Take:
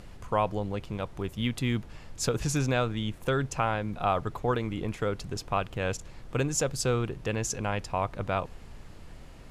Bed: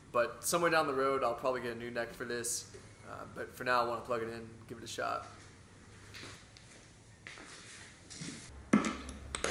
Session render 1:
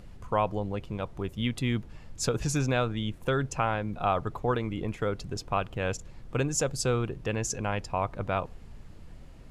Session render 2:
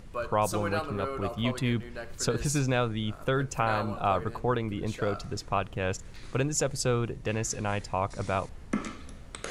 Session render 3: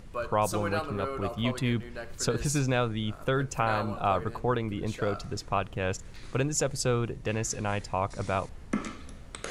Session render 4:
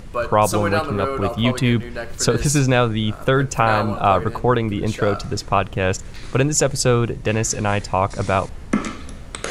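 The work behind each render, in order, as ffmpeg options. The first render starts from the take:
-af "afftdn=nr=6:nf=-47"
-filter_complex "[1:a]volume=-3dB[a];[0:a][a]amix=inputs=2:normalize=0"
-af anull
-af "volume=10.5dB"

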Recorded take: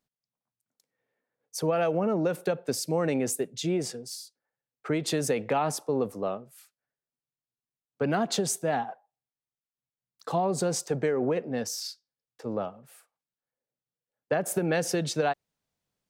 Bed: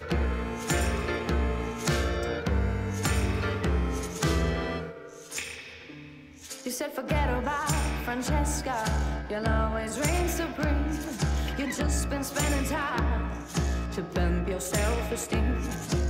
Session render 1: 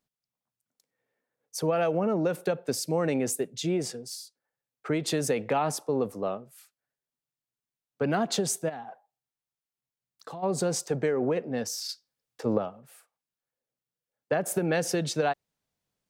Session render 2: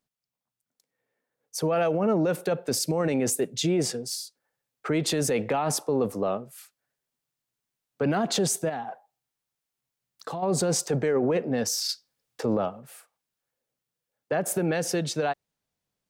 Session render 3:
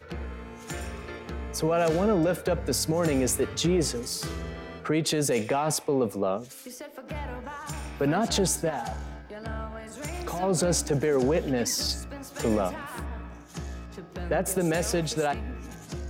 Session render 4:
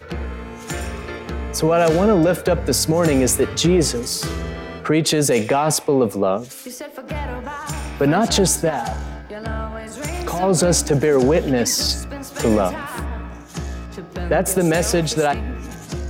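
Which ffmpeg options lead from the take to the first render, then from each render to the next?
-filter_complex "[0:a]asplit=3[a][b][c];[a]afade=t=out:st=8.68:d=0.02[d];[b]acompressor=threshold=-38dB:ratio=4:attack=3.2:release=140:knee=1:detection=peak,afade=t=in:st=8.68:d=0.02,afade=t=out:st=10.42:d=0.02[e];[c]afade=t=in:st=10.42:d=0.02[f];[d][e][f]amix=inputs=3:normalize=0,asettb=1/sr,asplit=3[g][h][i];[g]atrim=end=11.894[j];[h]atrim=start=11.89:end=12.58,asetpts=PTS-STARTPTS,afade=t=in:d=0.004:c=qsin,afade=t=out:st=0.686:d=0.004:c=qsin,acontrast=68[k];[i]atrim=start=12.576[l];[j][k]acrossfade=d=0.004:c1=hsin:c2=qsin[m];[m][l]acrossfade=d=0.004:c1=qsin:c2=hsin"
-af "dynaudnorm=f=190:g=21:m=6.5dB,alimiter=limit=-17dB:level=0:latency=1:release=18"
-filter_complex "[1:a]volume=-9dB[a];[0:a][a]amix=inputs=2:normalize=0"
-af "volume=8.5dB"

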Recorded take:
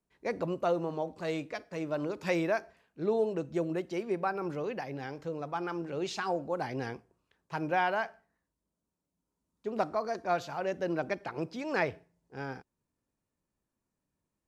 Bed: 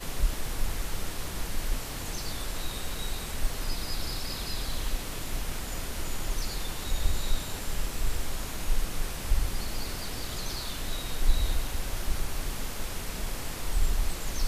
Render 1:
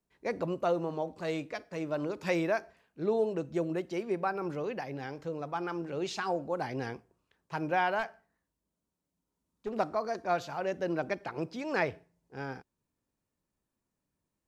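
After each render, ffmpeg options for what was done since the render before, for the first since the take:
-filter_complex "[0:a]asettb=1/sr,asplit=3[a][b][c];[a]atrim=end=7.994[d];[b]atrim=start=7.99:end=9.75,asetpts=PTS-STARTPTS,afade=t=in:d=0.004:c=qsin,afade=t=out:st=1.756:d=0.004:c=qsin,aeval=exprs='clip(val(0),-1,0.0266)':c=same[e];[c]atrim=start=9.746[f];[d][e]acrossfade=d=0.004:c1=hsin:c2=qsin[g];[g][f]acrossfade=d=0.004:c1=qsin:c2=hsin"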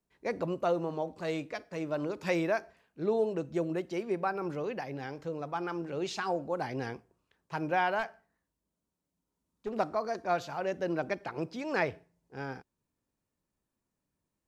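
-af anull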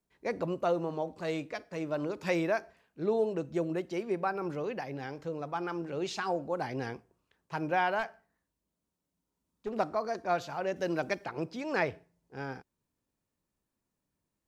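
-filter_complex "[0:a]asettb=1/sr,asplit=3[a][b][c];[a]atrim=end=10.764[d];[b]atrim=start=10.76:end=11.25,asetpts=PTS-STARTPTS,afade=t=in:d=0.004:c=qsin,afade=t=out:st=0.486:d=0.004:c=qsin,highshelf=f=3.3k:g=9.5[e];[c]atrim=start=11.246[f];[d][e]acrossfade=d=0.004:c1=hsin:c2=qsin[g];[g][f]acrossfade=d=0.004:c1=qsin:c2=hsin"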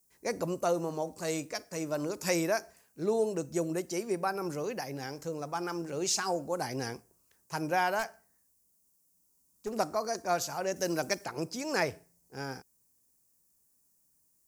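-af "aexciter=amount=5.8:drive=7.8:freq=5.1k"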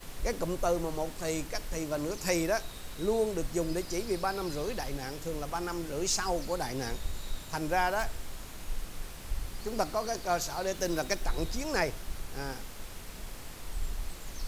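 -filter_complex "[1:a]volume=-9dB[a];[0:a][a]amix=inputs=2:normalize=0"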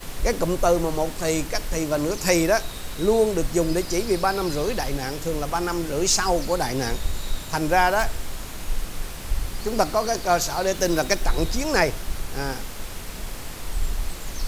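-af "volume=9.5dB"

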